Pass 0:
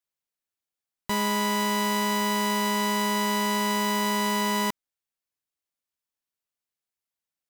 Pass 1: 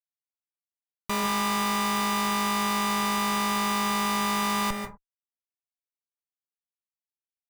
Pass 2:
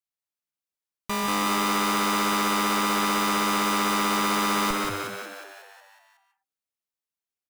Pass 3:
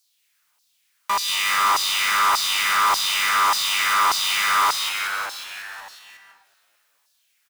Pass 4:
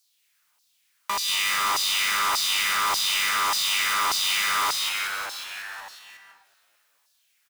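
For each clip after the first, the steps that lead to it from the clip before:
low-pass filter 6,800 Hz 12 dB per octave; comparator with hysteresis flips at −34.5 dBFS; on a send at −5 dB: convolution reverb, pre-delay 134 ms; on the sum: level +2 dB
echo with shifted repeats 183 ms, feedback 58%, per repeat +96 Hz, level −3.5 dB
auto-filter high-pass saw down 1.7 Hz 860–5,000 Hz; power curve on the samples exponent 0.7; echo with shifted repeats 219 ms, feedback 58%, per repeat −62 Hz, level −20.5 dB
dynamic equaliser 1,100 Hz, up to −6 dB, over −30 dBFS, Q 0.91; level −1 dB

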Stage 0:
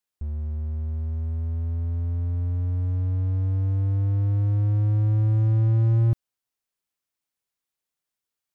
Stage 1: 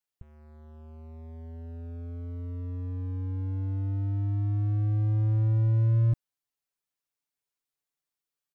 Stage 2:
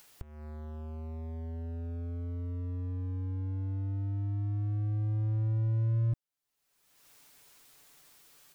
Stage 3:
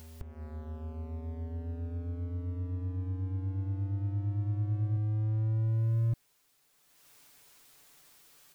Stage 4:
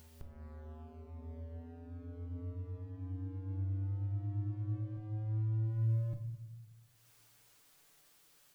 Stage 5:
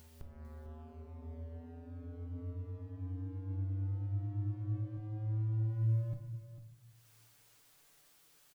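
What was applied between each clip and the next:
comb filter 6.9 ms, depth 97%; level −7 dB
upward compression, threshold −26 dBFS; level −5.5 dB
backwards echo 1,162 ms −10.5 dB
rectangular room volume 340 cubic metres, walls mixed, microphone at 0.61 metres; level −7 dB
single-tap delay 449 ms −13 dB

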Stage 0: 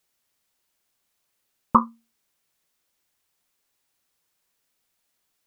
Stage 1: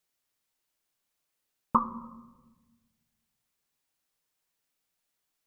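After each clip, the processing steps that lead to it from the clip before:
rectangular room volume 790 cubic metres, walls mixed, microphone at 0.48 metres
level −7 dB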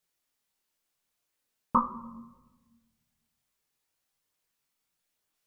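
multi-voice chorus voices 2, 0.46 Hz, delay 23 ms, depth 2.6 ms
level +3.5 dB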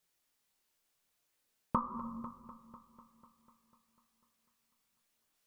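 downward compressor 10 to 1, threshold −30 dBFS, peak gain reduction 12 dB
echo machine with several playback heads 248 ms, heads first and second, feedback 51%, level −18 dB
level +1.5 dB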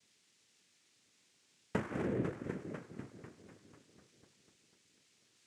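parametric band 1,400 Hz −13.5 dB 2.2 octaves
downward compressor 3 to 1, threshold −49 dBFS, peak gain reduction 14 dB
cochlear-implant simulation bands 3
level +15.5 dB

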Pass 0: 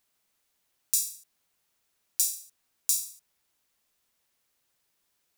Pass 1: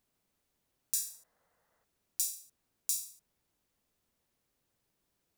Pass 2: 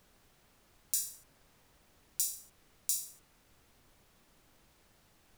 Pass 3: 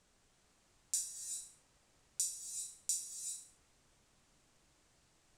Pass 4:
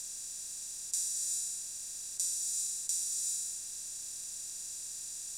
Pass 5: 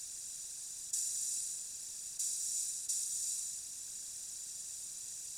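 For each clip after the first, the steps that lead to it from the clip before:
gain on a spectral selection 0:00.95–0:01.84, 450–2,100 Hz +11 dB; tilt shelving filter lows +7 dB, about 650 Hz
background noise pink −66 dBFS
low-pass with resonance 8,000 Hz, resonance Q 2; reverb whose tail is shaped and stops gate 430 ms rising, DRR 4 dB; level −7 dB
compressor on every frequency bin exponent 0.2
random phases in short frames; level −3 dB

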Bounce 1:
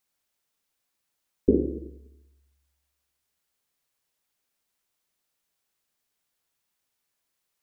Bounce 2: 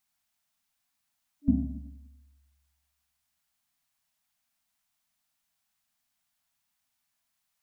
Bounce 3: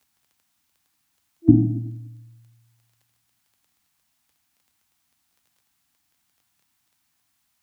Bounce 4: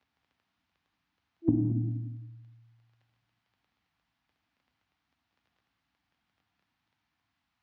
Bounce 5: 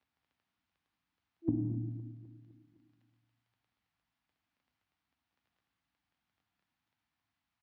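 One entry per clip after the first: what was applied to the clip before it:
brick-wall band-stop 290–610 Hz
low-shelf EQ 220 Hz +5.5 dB; surface crackle 11 per second −56 dBFS; frequency shifter +47 Hz; level +8 dB
downward compressor, threshold −21 dBFS, peak gain reduction 13 dB; high-frequency loss of the air 270 metres; reverb whose tail is shaped and stops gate 250 ms flat, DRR 6 dB; level −1.5 dB
repeating echo 255 ms, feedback 56%, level −17 dB; level −6.5 dB

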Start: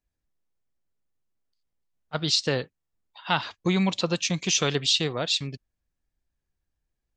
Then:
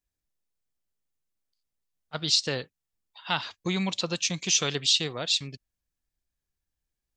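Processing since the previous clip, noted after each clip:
high-shelf EQ 2,700 Hz +8 dB
level −5.5 dB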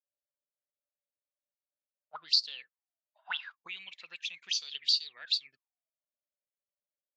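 envelope filter 580–4,600 Hz, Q 20, up, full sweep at −21.5 dBFS
level +7 dB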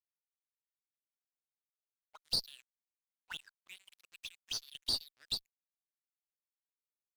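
dead-zone distortion −45 dBFS
high-shelf EQ 3,700 Hz +7.5 dB
tube saturation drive 16 dB, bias 0.55
level −7.5 dB

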